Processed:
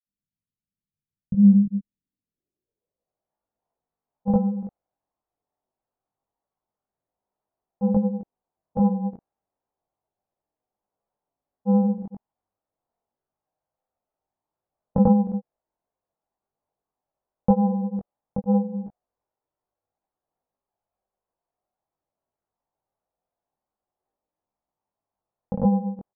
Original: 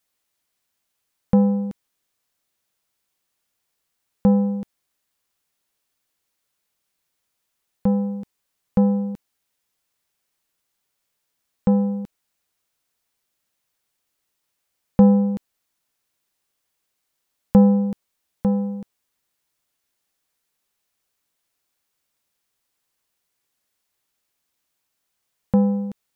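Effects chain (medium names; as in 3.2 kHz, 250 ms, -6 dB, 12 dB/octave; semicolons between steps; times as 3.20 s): low-pass sweep 180 Hz -> 770 Hz, 1.85–3.34 s; granulator, pitch spread up and down by 0 st; chorus voices 2, 0.27 Hz, delay 20 ms, depth 1.1 ms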